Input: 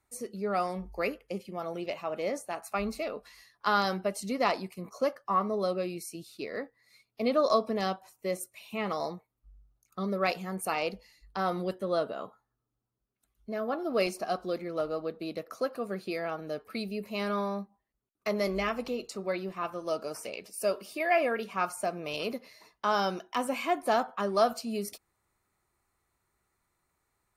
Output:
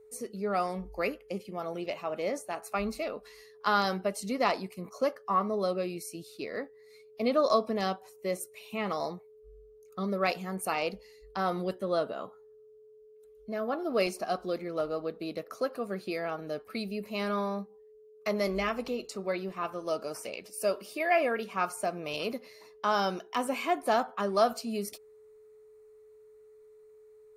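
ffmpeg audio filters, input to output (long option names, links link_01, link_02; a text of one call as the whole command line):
ffmpeg -i in.wav -af "aeval=exprs='val(0)+0.00224*sin(2*PI*430*n/s)':channel_layout=same" out.wav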